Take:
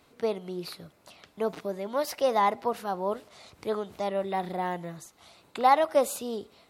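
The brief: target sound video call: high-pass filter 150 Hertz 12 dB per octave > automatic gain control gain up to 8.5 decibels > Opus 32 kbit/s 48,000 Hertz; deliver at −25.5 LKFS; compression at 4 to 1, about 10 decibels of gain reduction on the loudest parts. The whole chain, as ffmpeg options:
ffmpeg -i in.wav -af "acompressor=threshold=-28dB:ratio=4,highpass=150,dynaudnorm=maxgain=8.5dB,volume=9dB" -ar 48000 -c:a libopus -b:a 32k out.opus

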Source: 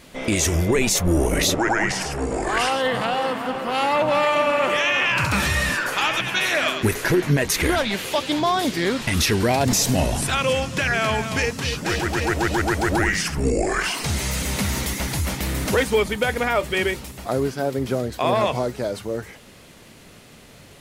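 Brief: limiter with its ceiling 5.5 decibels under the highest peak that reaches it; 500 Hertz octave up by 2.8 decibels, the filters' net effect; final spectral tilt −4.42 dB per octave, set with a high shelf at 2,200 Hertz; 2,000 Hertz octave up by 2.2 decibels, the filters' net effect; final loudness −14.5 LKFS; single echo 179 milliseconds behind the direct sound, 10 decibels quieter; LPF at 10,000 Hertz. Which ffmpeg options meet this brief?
ffmpeg -i in.wav -af "lowpass=10000,equalizer=frequency=500:width_type=o:gain=3.5,equalizer=frequency=2000:width_type=o:gain=5,highshelf=frequency=2200:gain=-4.5,alimiter=limit=-12.5dB:level=0:latency=1,aecho=1:1:179:0.316,volume=7.5dB" out.wav

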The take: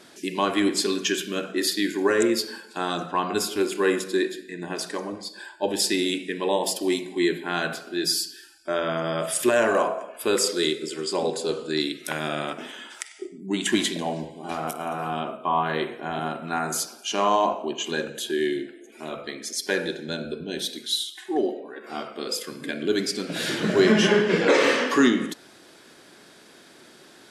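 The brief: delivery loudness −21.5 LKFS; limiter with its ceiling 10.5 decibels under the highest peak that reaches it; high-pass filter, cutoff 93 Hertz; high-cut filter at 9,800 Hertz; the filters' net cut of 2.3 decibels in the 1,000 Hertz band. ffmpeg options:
ffmpeg -i in.wav -af "highpass=93,lowpass=9800,equalizer=frequency=1000:width_type=o:gain=-3,volume=8.5dB,alimiter=limit=-10dB:level=0:latency=1" out.wav

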